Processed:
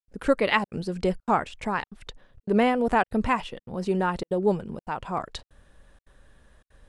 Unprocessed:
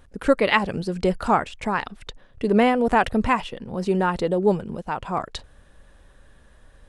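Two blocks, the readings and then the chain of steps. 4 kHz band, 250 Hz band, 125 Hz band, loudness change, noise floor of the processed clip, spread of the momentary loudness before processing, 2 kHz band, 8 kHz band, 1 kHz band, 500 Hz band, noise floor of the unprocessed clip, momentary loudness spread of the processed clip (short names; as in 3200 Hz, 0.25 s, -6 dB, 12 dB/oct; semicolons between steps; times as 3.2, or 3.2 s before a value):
-4.0 dB, -3.5 dB, -4.0 dB, -3.5 dB, under -85 dBFS, 12 LU, -3.5 dB, n/a, -3.5 dB, -4.0 dB, -53 dBFS, 13 LU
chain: step gate ".xxxxxxx.xxxxxx" 188 bpm -60 dB; gain -3.5 dB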